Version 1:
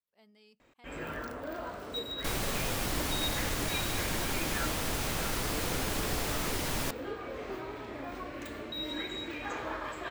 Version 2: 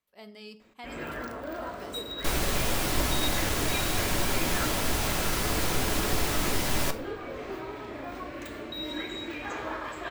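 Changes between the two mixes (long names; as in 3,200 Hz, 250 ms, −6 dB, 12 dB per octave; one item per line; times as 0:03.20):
speech +11.5 dB
reverb: on, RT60 0.70 s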